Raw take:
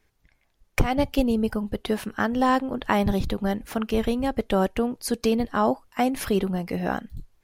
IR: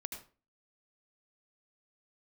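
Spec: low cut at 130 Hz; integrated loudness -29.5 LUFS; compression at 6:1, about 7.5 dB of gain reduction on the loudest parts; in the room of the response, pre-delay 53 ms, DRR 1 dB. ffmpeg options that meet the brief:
-filter_complex "[0:a]highpass=130,acompressor=threshold=-25dB:ratio=6,asplit=2[a][b];[1:a]atrim=start_sample=2205,adelay=53[c];[b][c]afir=irnorm=-1:irlink=0,volume=0.5dB[d];[a][d]amix=inputs=2:normalize=0,volume=-1.5dB"

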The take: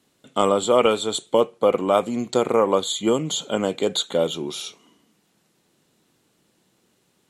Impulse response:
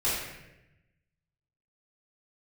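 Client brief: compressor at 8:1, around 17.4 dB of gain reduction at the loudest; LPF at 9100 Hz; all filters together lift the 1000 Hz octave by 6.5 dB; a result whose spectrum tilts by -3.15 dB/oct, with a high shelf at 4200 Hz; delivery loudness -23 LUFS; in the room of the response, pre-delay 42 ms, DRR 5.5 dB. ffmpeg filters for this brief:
-filter_complex "[0:a]lowpass=9.1k,equalizer=f=1k:t=o:g=8,highshelf=f=4.2k:g=3.5,acompressor=threshold=-28dB:ratio=8,asplit=2[a][b];[1:a]atrim=start_sample=2205,adelay=42[c];[b][c]afir=irnorm=-1:irlink=0,volume=-16dB[d];[a][d]amix=inputs=2:normalize=0,volume=8.5dB"

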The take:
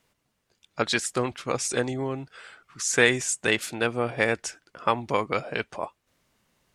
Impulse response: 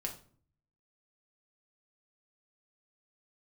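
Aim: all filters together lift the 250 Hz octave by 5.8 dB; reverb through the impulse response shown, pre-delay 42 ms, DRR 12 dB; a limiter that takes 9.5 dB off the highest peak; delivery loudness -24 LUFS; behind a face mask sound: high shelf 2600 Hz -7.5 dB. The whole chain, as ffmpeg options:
-filter_complex "[0:a]equalizer=f=250:t=o:g=7,alimiter=limit=-13dB:level=0:latency=1,asplit=2[a][b];[1:a]atrim=start_sample=2205,adelay=42[c];[b][c]afir=irnorm=-1:irlink=0,volume=-12dB[d];[a][d]amix=inputs=2:normalize=0,highshelf=f=2.6k:g=-7.5,volume=4.5dB"

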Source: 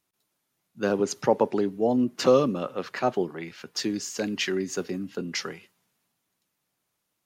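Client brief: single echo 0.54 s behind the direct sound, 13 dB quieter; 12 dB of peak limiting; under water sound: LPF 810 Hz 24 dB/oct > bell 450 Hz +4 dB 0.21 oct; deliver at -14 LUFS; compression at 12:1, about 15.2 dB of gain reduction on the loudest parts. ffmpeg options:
-af "acompressor=threshold=-29dB:ratio=12,alimiter=level_in=5.5dB:limit=-24dB:level=0:latency=1,volume=-5.5dB,lowpass=f=810:w=0.5412,lowpass=f=810:w=1.3066,equalizer=f=450:t=o:w=0.21:g=4,aecho=1:1:540:0.224,volume=26dB"

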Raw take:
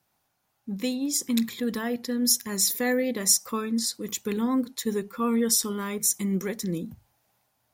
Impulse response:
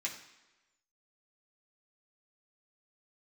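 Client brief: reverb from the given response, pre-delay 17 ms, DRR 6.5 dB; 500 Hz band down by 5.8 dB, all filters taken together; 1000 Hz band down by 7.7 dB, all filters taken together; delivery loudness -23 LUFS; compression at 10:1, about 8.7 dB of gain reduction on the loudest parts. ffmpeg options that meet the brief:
-filter_complex "[0:a]equalizer=f=500:t=o:g=-5,equalizer=f=1k:t=o:g=-8.5,acompressor=threshold=-25dB:ratio=10,asplit=2[a][b];[1:a]atrim=start_sample=2205,adelay=17[c];[b][c]afir=irnorm=-1:irlink=0,volume=-8.5dB[d];[a][d]amix=inputs=2:normalize=0,volume=7dB"

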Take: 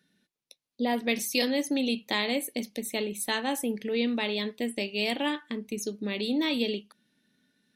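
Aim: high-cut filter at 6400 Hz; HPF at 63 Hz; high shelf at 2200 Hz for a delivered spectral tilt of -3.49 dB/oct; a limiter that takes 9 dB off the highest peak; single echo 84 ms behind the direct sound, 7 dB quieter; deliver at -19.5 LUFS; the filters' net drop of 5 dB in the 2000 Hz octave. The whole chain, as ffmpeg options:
-af "highpass=63,lowpass=6.4k,equalizer=f=2k:t=o:g=-8.5,highshelf=f=2.2k:g=3.5,alimiter=limit=-22dB:level=0:latency=1,aecho=1:1:84:0.447,volume=12.5dB"

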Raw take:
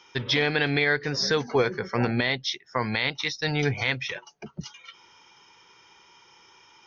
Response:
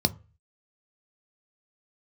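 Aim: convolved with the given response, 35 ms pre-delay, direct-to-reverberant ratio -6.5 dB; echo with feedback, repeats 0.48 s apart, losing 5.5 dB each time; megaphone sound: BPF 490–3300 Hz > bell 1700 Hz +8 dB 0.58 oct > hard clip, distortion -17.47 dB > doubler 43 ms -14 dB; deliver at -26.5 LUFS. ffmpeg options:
-filter_complex "[0:a]aecho=1:1:480|960|1440|1920|2400|2880|3360:0.531|0.281|0.149|0.079|0.0419|0.0222|0.0118,asplit=2[a][b];[1:a]atrim=start_sample=2205,adelay=35[c];[b][c]afir=irnorm=-1:irlink=0,volume=-3.5dB[d];[a][d]amix=inputs=2:normalize=0,highpass=490,lowpass=3.3k,equalizer=f=1.7k:t=o:w=0.58:g=8,asoftclip=type=hard:threshold=-8.5dB,asplit=2[e][f];[f]adelay=43,volume=-14dB[g];[e][g]amix=inputs=2:normalize=0,volume=-9dB"

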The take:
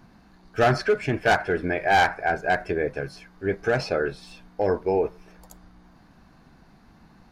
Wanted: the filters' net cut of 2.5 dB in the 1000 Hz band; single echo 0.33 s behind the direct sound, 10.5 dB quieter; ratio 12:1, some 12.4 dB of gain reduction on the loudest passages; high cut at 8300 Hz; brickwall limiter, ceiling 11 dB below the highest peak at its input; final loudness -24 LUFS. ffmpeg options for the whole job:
-af "lowpass=8.3k,equalizer=f=1k:t=o:g=-4,acompressor=threshold=-29dB:ratio=12,alimiter=level_in=5.5dB:limit=-24dB:level=0:latency=1,volume=-5.5dB,aecho=1:1:330:0.299,volume=15.5dB"

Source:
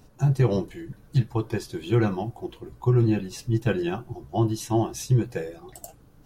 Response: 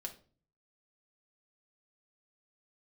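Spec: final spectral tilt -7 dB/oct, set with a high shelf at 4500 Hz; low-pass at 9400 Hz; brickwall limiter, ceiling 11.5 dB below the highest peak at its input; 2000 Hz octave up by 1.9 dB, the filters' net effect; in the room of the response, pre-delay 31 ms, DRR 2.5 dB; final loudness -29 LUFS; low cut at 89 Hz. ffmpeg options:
-filter_complex "[0:a]highpass=89,lowpass=9.4k,equalizer=f=2k:t=o:g=3.5,highshelf=f=4.5k:g=-4.5,alimiter=limit=-20.5dB:level=0:latency=1,asplit=2[a][b];[1:a]atrim=start_sample=2205,adelay=31[c];[b][c]afir=irnorm=-1:irlink=0,volume=0dB[d];[a][d]amix=inputs=2:normalize=0,volume=0.5dB"

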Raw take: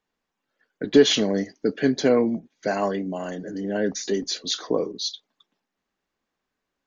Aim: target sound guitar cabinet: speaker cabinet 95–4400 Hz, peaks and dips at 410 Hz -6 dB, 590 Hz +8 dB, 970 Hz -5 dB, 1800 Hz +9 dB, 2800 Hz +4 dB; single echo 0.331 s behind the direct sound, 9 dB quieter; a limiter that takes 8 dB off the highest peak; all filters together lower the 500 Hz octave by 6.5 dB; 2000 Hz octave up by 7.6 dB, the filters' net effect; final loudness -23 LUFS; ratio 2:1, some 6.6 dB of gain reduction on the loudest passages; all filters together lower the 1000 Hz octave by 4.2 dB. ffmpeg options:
-af "equalizer=f=500:t=o:g=-7,equalizer=f=1k:t=o:g=-4,equalizer=f=2k:t=o:g=4,acompressor=threshold=-25dB:ratio=2,alimiter=limit=-20.5dB:level=0:latency=1,highpass=95,equalizer=f=410:t=q:w=4:g=-6,equalizer=f=590:t=q:w=4:g=8,equalizer=f=970:t=q:w=4:g=-5,equalizer=f=1.8k:t=q:w=4:g=9,equalizer=f=2.8k:t=q:w=4:g=4,lowpass=f=4.4k:w=0.5412,lowpass=f=4.4k:w=1.3066,aecho=1:1:331:0.355,volume=7.5dB"

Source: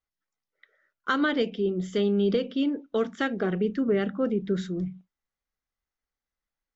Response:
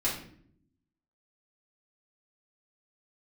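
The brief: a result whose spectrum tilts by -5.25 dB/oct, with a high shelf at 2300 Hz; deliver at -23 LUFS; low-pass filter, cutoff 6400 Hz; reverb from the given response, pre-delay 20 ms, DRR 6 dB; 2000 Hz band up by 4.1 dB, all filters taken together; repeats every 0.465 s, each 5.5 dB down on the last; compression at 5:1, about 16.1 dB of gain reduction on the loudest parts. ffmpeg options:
-filter_complex "[0:a]lowpass=6.4k,equalizer=f=2k:t=o:g=9,highshelf=f=2.3k:g=-7,acompressor=threshold=-39dB:ratio=5,aecho=1:1:465|930|1395|1860|2325|2790|3255:0.531|0.281|0.149|0.079|0.0419|0.0222|0.0118,asplit=2[a][b];[1:a]atrim=start_sample=2205,adelay=20[c];[b][c]afir=irnorm=-1:irlink=0,volume=-13.5dB[d];[a][d]amix=inputs=2:normalize=0,volume=16.5dB"

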